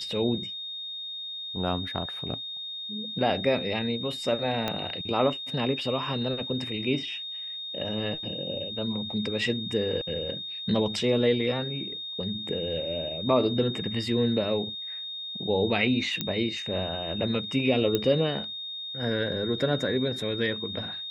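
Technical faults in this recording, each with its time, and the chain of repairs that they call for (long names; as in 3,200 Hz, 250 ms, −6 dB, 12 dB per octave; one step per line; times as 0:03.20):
whistle 3,700 Hz −34 dBFS
0:04.68: click −14 dBFS
0:16.21: click −12 dBFS
0:17.95: click −12 dBFS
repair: click removal
notch filter 3,700 Hz, Q 30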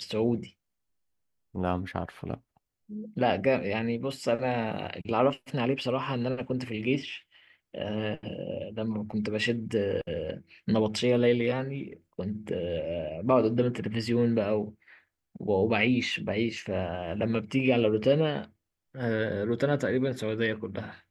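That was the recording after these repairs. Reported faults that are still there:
0:04.68: click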